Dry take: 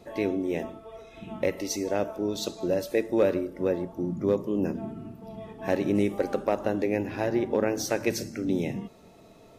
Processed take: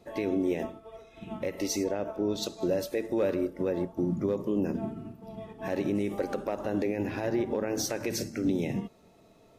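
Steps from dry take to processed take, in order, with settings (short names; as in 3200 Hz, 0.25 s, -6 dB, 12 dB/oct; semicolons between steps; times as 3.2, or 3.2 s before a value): 1.83–2.42 high shelf 3800 Hz -> 6300 Hz -10.5 dB; limiter -23 dBFS, peak gain reduction 11 dB; upward expander 1.5:1, over -49 dBFS; gain +4.5 dB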